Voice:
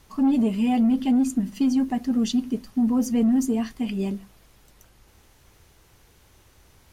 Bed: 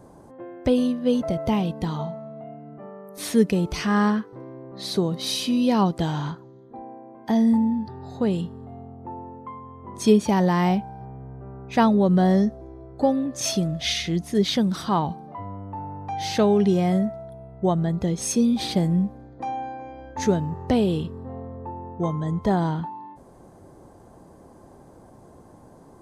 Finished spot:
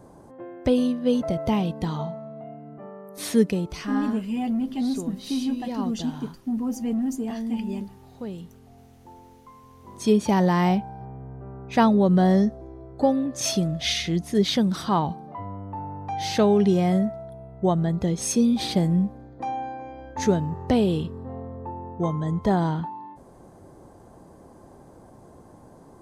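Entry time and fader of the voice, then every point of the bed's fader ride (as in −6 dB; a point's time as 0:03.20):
3.70 s, −5.5 dB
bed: 0:03.39 −0.5 dB
0:04.05 −11.5 dB
0:09.52 −11.5 dB
0:10.31 0 dB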